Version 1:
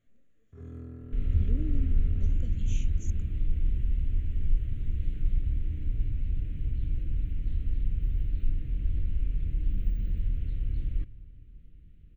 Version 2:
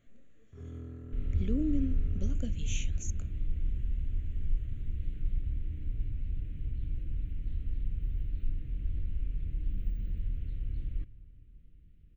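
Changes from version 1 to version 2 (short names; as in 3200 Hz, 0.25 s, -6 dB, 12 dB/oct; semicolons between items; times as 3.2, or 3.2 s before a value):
speech +8.0 dB; first sound: send -10.0 dB; second sound -5.0 dB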